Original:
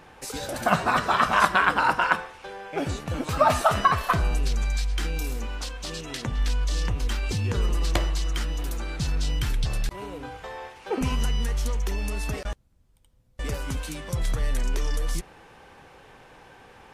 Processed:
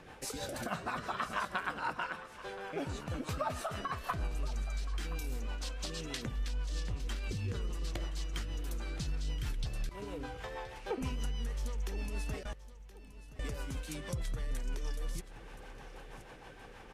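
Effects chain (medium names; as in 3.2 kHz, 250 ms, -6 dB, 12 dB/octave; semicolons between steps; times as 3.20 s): compression 2.5:1, threshold -37 dBFS, peak gain reduction 15.5 dB; rotary cabinet horn 6.3 Hz; on a send: feedback delay 1023 ms, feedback 36%, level -16 dB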